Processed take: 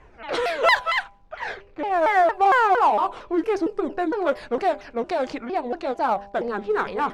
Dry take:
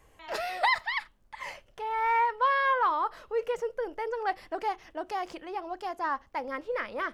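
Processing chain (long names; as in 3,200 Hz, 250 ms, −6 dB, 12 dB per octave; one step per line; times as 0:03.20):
pitch shifter swept by a sawtooth −7 semitones, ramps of 229 ms
hum removal 200 Hz, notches 5
low-pass that shuts in the quiet parts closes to 2,700 Hz, open at −27 dBFS
in parallel at −7 dB: hard clipping −32.5 dBFS, distortion −6 dB
on the sum: level +7.5 dB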